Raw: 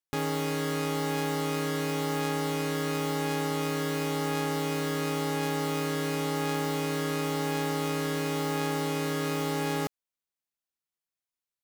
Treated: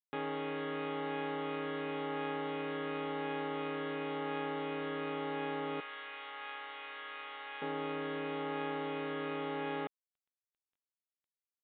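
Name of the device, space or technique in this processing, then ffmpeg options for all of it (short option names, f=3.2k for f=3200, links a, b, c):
telephone: -filter_complex "[0:a]asettb=1/sr,asplit=3[a][b][c];[a]atrim=end=5.804[d];[b]atrim=start=5.8:end=7.62,asetpts=PTS-STARTPTS,afade=t=in:d=0.004:c=qsin,afade=t=out:st=1.816:d=0.004:c=qsin,highpass=1.2k[e];[c]atrim=start=7.616[f];[d][e]acrossfade=d=0.004:c1=hsin:c2=qsin[g];[g][f]acrossfade=d=0.004:c1=qsin:c2=hsin,highpass=270,lowpass=3.4k,volume=-6dB" -ar 8000 -c:a pcm_mulaw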